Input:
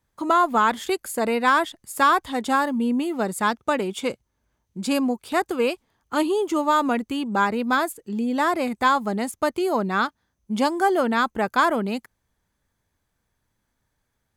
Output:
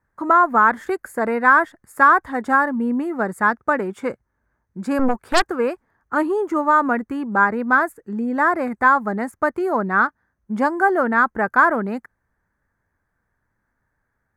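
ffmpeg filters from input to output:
-filter_complex "[0:a]highshelf=f=2300:t=q:w=3:g=-11,asettb=1/sr,asplit=3[s0][s1][s2];[s0]atrim=end=4.994[s3];[s1]atrim=start=4.99:end=5.48,asetpts=PTS-STARTPTS,afade=t=in:d=0.004:c=qsin,afade=t=out:st=0.486:d=0.004:c=qsin,aeval=exprs='0.473*(cos(1*acos(clip(val(0)/0.473,-1,1)))-cos(1*PI/2))+0.15*(cos(4*acos(clip(val(0)/0.473,-1,1)))-cos(4*PI/2))+0.0299*(cos(5*acos(clip(val(0)/0.473,-1,1)))-cos(5*PI/2))+0.237*(cos(6*acos(clip(val(0)/0.473,-1,1)))-cos(6*PI/2))':c=same[s4];[s2]atrim=start=5.476[s5];[s3][s4]acrossfade=d=0.004:c1=hsin:c2=qsin[s6];[s6][s5]acrossfade=d=0.004:c1=qsin:c2=hsin,volume=1.12"

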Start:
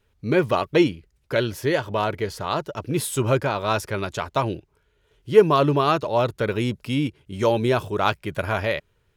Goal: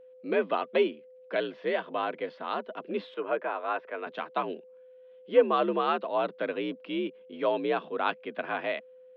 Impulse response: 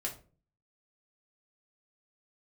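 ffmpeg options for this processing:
-filter_complex "[0:a]highpass=f=170:t=q:w=0.5412,highpass=f=170:t=q:w=1.307,lowpass=f=3500:t=q:w=0.5176,lowpass=f=3500:t=q:w=0.7071,lowpass=f=3500:t=q:w=1.932,afreqshift=60,aeval=exprs='val(0)+0.00708*sin(2*PI*510*n/s)':c=same,asettb=1/sr,asplit=3[s0][s1][s2];[s0]atrim=end=3.144[s3];[s1]atrim=start=3.14:end=4.07,asetpts=PTS-STARTPTS,afade=t=in:d=0.004:c=qsin,afade=t=out:st=0.926:d=0.004:c=qsin,acrossover=split=310 2700:gain=0.0708 1 0.0891[s4][s5][s6];[s4][s5][s6]amix=inputs=3:normalize=0[s7];[s2]atrim=start=4.066[s8];[s3][s7]acrossfade=d=0.004:c1=hsin:c2=qsin[s9];[s9][s8]acrossfade=d=0.004:c1=qsin:c2=hsin,volume=0.447"

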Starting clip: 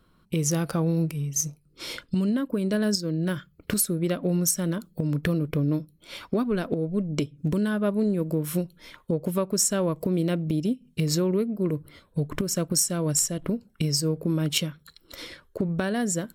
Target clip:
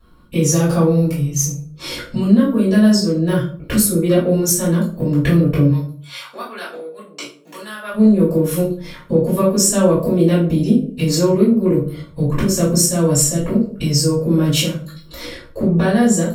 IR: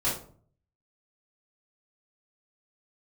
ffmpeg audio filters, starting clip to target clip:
-filter_complex "[0:a]asplit=3[s0][s1][s2];[s0]afade=t=out:st=5.66:d=0.02[s3];[s1]highpass=1100,afade=t=in:st=5.66:d=0.02,afade=t=out:st=7.93:d=0.02[s4];[s2]afade=t=in:st=7.93:d=0.02[s5];[s3][s4][s5]amix=inputs=3:normalize=0[s6];[1:a]atrim=start_sample=2205,asetrate=43218,aresample=44100[s7];[s6][s7]afir=irnorm=-1:irlink=0"

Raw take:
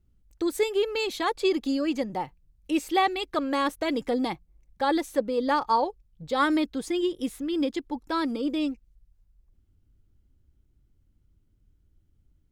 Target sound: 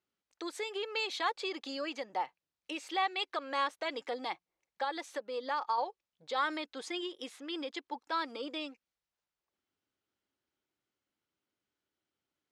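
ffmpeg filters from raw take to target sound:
-filter_complex "[0:a]asettb=1/sr,asplit=3[s0][s1][s2];[s0]atrim=end=4.844[s3];[s1]atrim=start=4.84:end=5.78,asetpts=PTS-STARTPTS,afade=t=in:d=0.004:c=qsin,afade=t=out:st=0.936:d=0.004:c=qsin,acompressor=threshold=0.0501:ratio=6[s4];[s2]atrim=start=5.776[s5];[s3][s4]acrossfade=d=0.004:c1=hsin:c2=qsin[s6];[s6][s5]acrossfade=d=0.004:c1=qsin:c2=hsin,alimiter=limit=0.0891:level=0:latency=1:release=163,highpass=690,lowpass=5600"

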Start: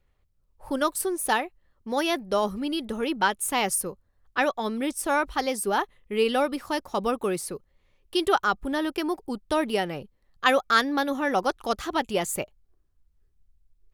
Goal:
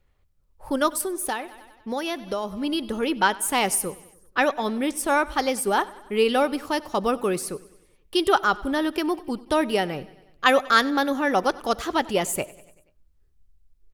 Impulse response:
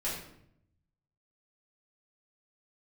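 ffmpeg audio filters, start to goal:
-filter_complex "[0:a]asplit=2[s0][s1];[s1]aecho=0:1:96|192|288|384|480:0.0891|0.0526|0.031|0.0183|0.0108[s2];[s0][s2]amix=inputs=2:normalize=0,asplit=3[s3][s4][s5];[s3]afade=t=out:st=1:d=0.02[s6];[s4]acompressor=threshold=0.0398:ratio=5,afade=t=in:st=1:d=0.02,afade=t=out:st=2.62:d=0.02[s7];[s5]afade=t=in:st=2.62:d=0.02[s8];[s6][s7][s8]amix=inputs=3:normalize=0,asplit=2[s9][s10];[1:a]atrim=start_sample=2205[s11];[s10][s11]afir=irnorm=-1:irlink=0,volume=0.0422[s12];[s9][s12]amix=inputs=2:normalize=0,volume=1.33"

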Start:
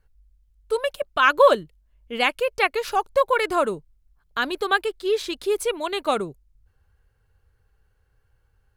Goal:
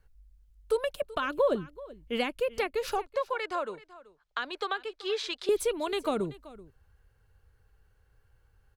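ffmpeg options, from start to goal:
-filter_complex "[0:a]asettb=1/sr,asplit=3[s0][s1][s2];[s0]atrim=end=3.064[s3];[s1]atrim=start=3.06:end=5.49,asetpts=PTS-STARTPTS,afade=t=in:d=0.004:c=qsin,afade=t=out:st=2.426:d=0.004:c=qsin,acrossover=split=530 6900:gain=0.126 1 0.0708[s4][s5][s6];[s4][s5][s6]amix=inputs=3:normalize=0[s7];[s2]atrim=start=5.486[s8];[s3][s7]acrossfade=d=0.004:c1=hsin:c2=qsin[s9];[s9][s8]acrossfade=d=0.004:c1=qsin:c2=hsin,acrossover=split=400[s10][s11];[s11]acompressor=threshold=0.0316:ratio=10[s12];[s10][s12]amix=inputs=2:normalize=0,aecho=1:1:382:0.112"

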